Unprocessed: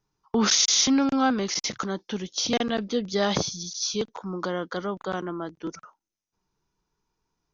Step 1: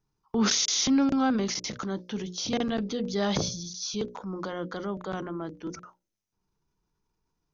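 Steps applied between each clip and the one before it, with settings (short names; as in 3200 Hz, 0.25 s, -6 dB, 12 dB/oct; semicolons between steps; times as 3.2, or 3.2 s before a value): low shelf 350 Hz +7.5 dB; notches 60/120/180/240/300/360/420/480/540/600 Hz; transient shaper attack -2 dB, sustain +5 dB; gain -5.5 dB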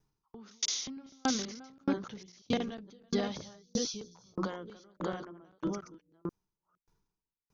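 reverse delay 0.484 s, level -2.5 dB; compressor 3:1, threshold -30 dBFS, peak gain reduction 10 dB; dB-ramp tremolo decaying 1.6 Hz, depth 39 dB; gain +5 dB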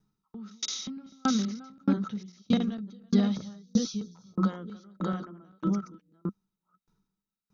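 small resonant body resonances 200/1300/3800 Hz, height 15 dB, ringing for 55 ms; gain -2 dB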